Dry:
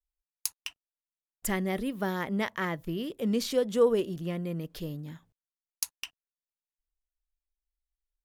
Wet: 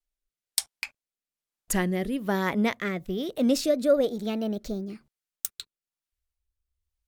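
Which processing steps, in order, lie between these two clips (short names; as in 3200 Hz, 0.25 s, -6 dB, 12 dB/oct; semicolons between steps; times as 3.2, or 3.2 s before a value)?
speed glide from 75% -> 158%; rotary speaker horn 1.1 Hz; gain +6 dB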